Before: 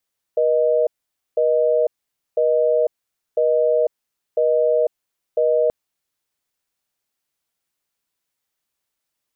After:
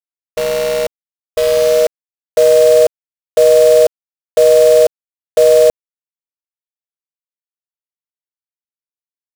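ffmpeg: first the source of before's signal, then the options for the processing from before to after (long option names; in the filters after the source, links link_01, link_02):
-f lavfi -i "aevalsrc='0.141*(sin(2*PI*480*t)+sin(2*PI*620*t))*clip(min(mod(t,1),0.5-mod(t,1))/0.005,0,1)':duration=5.33:sample_rate=44100"
-af "dynaudnorm=framelen=380:gausssize=9:maxgain=14dB,acrusher=bits=4:dc=4:mix=0:aa=0.000001"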